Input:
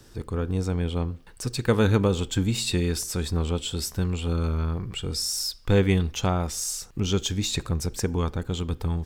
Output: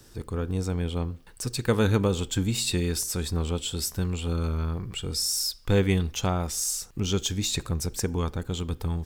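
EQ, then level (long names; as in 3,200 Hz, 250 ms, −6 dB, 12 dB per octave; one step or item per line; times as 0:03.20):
high-shelf EQ 6,700 Hz +6.5 dB
−2.0 dB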